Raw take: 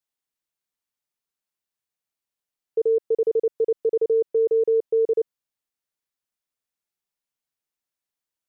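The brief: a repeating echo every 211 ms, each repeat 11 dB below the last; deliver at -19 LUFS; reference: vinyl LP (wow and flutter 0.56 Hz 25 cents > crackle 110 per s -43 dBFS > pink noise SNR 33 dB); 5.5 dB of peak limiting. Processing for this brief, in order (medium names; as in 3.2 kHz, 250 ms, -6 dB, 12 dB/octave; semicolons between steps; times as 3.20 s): peak limiter -21 dBFS; feedback delay 211 ms, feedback 28%, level -11 dB; wow and flutter 0.56 Hz 25 cents; crackle 110 per s -43 dBFS; pink noise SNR 33 dB; trim +8 dB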